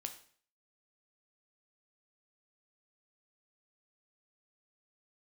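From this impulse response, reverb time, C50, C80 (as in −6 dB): 0.50 s, 11.5 dB, 15.0 dB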